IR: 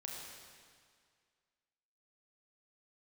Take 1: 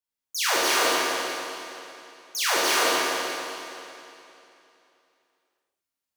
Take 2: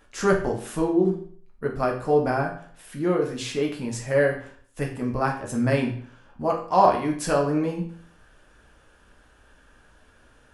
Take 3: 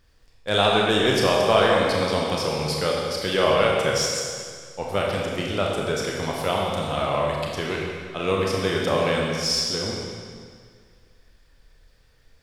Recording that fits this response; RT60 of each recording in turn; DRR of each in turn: 3; 2.9, 0.55, 2.0 s; -9.0, -0.5, -2.5 dB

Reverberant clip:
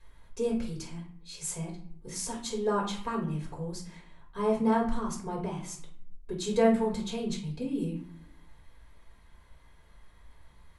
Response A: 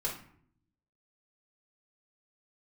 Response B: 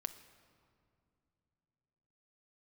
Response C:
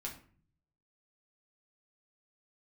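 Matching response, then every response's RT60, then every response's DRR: A; not exponential, 2.6 s, 0.45 s; -4.0, 9.5, -2.0 dB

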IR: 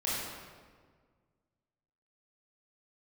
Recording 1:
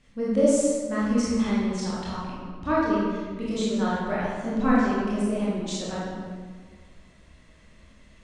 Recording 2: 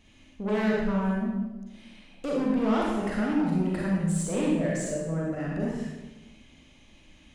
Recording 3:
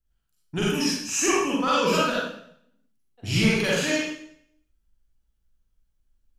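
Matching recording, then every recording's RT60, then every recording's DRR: 1; 1.7, 1.1, 0.65 s; -8.0, -4.0, -6.5 dB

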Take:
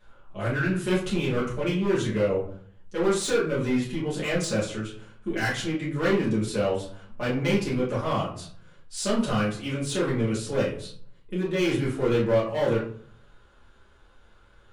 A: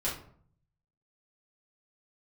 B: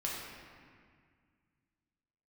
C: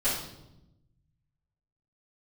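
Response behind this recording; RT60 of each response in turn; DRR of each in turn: A; 0.55, 1.9, 0.90 s; -8.0, -5.0, -15.0 dB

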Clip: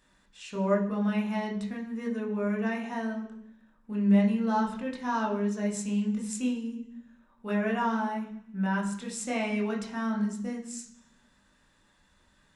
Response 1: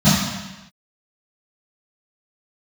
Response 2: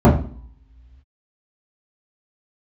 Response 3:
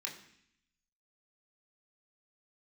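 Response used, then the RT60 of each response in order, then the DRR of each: 3; not exponential, not exponential, 0.65 s; -15.0, -8.5, -1.0 dB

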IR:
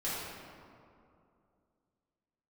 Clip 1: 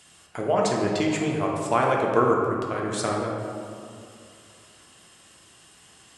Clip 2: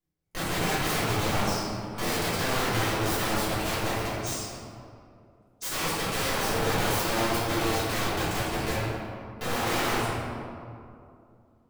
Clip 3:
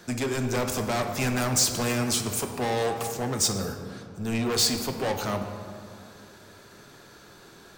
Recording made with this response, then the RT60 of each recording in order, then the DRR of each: 2; 2.5, 2.5, 2.5 s; -1.5, -11.5, 4.5 dB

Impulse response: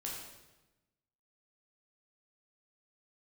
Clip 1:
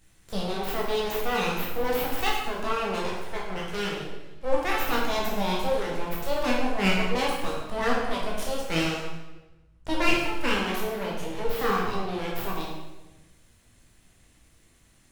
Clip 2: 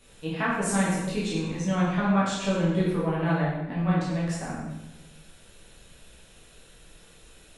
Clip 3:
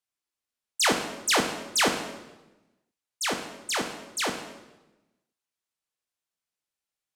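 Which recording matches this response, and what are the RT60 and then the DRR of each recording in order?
1; 1.1, 1.1, 1.1 s; -3.5, -8.0, 4.5 dB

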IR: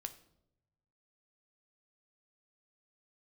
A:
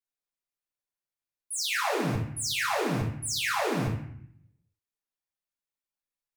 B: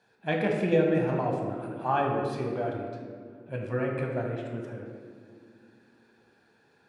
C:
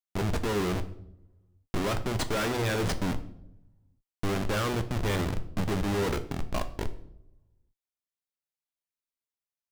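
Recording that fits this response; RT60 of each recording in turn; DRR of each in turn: C; 0.65, 2.0, 0.80 s; -7.5, -0.5, 8.0 dB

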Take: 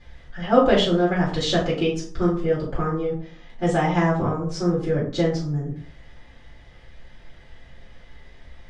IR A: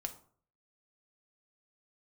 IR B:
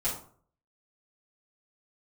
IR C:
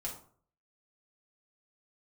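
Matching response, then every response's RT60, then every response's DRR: B; 0.50, 0.50, 0.50 s; 5.5, -11.5, -4.0 dB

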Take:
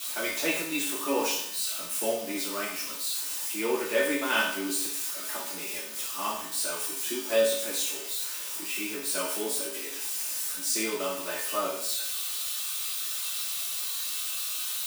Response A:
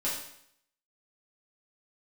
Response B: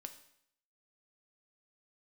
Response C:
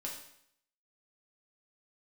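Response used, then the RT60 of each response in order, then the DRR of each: A; 0.70, 0.70, 0.70 s; -9.0, 6.5, -3.0 dB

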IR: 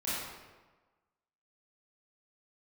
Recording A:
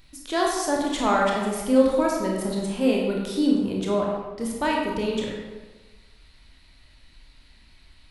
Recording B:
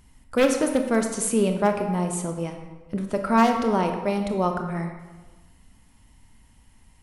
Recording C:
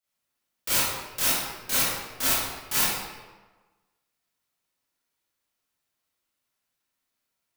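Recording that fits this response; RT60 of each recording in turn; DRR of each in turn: C; 1.3, 1.3, 1.3 s; -2.0, 4.5, -11.0 dB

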